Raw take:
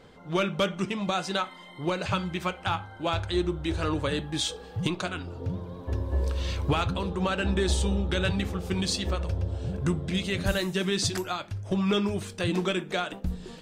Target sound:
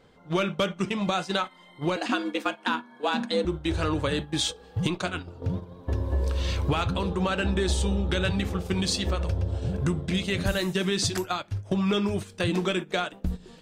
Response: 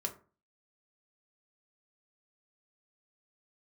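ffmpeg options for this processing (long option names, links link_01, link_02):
-filter_complex "[0:a]asettb=1/sr,asplit=3[link_01][link_02][link_03];[link_01]atrim=end=1.964[link_04];[link_02]atrim=start=1.96:end=3.45,asetpts=PTS-STARTPTS,afade=type=in:duration=0.004:curve=qsin,afade=type=out:start_time=1.486:duration=0.004:curve=qsin,afreqshift=140[link_05];[link_03]atrim=start=3.446[link_06];[link_04][link_05]acrossfade=duration=0.004:curve1=hsin:curve2=qsin[link_07];[link_07][link_06]acrossfade=duration=0.004:curve1=qsin:curve2=hsin,acompressor=threshold=-34dB:ratio=2,agate=range=-12dB:threshold=-36dB:ratio=16:detection=peak,volume=7dB"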